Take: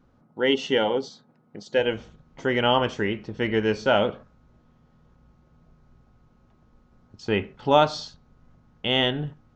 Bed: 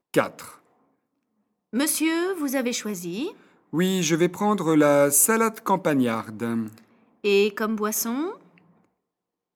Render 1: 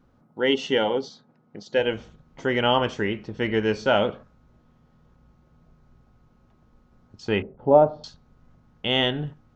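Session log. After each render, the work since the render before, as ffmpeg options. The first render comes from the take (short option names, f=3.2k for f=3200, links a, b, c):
-filter_complex "[0:a]asettb=1/sr,asplit=3[a][b][c];[a]atrim=end=0.894[d];[b]atrim=start=0.89:end=1.93,asetpts=PTS-STARTPTS,afade=t=in:d=0.004:c=qsin,afade=t=out:st=1.036:d=0.004:c=qsin,lowpass=f=6.9k:w=0.5412,lowpass=f=6.9k:w=1.3066[e];[c]atrim=start=1.926[f];[d][e]acrossfade=d=0.004:c1=hsin:c2=qsin[g];[g][f]acrossfade=d=0.004:c1=qsin:c2=hsin,asettb=1/sr,asplit=3[h][i][j];[h]atrim=end=7.424[k];[i]atrim=start=7.42:end=8.04,asetpts=PTS-STARTPTS,afade=t=in:d=0.004:c=qsin,afade=t=out:st=0.616:d=0.004:c=qsin,lowpass=f=610:t=q:w=1.6[l];[j]atrim=start=8.036[m];[k][l]acrossfade=d=0.004:c1=hsin:c2=qsin[n];[n][m]acrossfade=d=0.004:c1=qsin:c2=hsin"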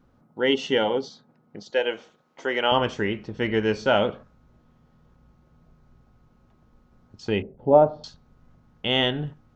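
-filter_complex "[0:a]asettb=1/sr,asplit=3[a][b][c];[a]atrim=end=1.704[d];[b]atrim=start=1.7:end=2.72,asetpts=PTS-STARTPTS,afade=t=in:d=0.004:c=qsin,afade=t=out:st=1.016:d=0.004:c=qsin,highpass=390[e];[c]atrim=start=2.716[f];[d][e]acrossfade=d=0.004:c1=hsin:c2=qsin[g];[g][f]acrossfade=d=0.004:c1=qsin:c2=hsin,asettb=1/sr,asplit=3[h][i][j];[h]atrim=end=7.304[k];[i]atrim=start=7.3:end=7.73,asetpts=PTS-STARTPTS,afade=t=in:d=0.004:c=qsin,afade=t=out:st=0.426:d=0.004:c=qsin,equalizer=f=1.3k:w=1.4:g=-11[l];[j]atrim=start=7.726[m];[k][l]acrossfade=d=0.004:c1=hsin:c2=qsin[n];[n][m]acrossfade=d=0.004:c1=qsin:c2=hsin"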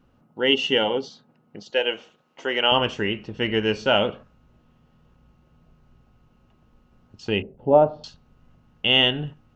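-af "equalizer=f=2.8k:w=6.5:g=12"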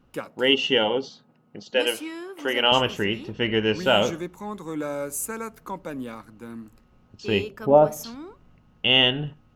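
-filter_complex "[1:a]volume=-12dB[a];[0:a][a]amix=inputs=2:normalize=0"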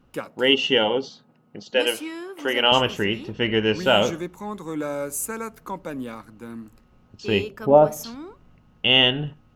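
-af "volume=1.5dB"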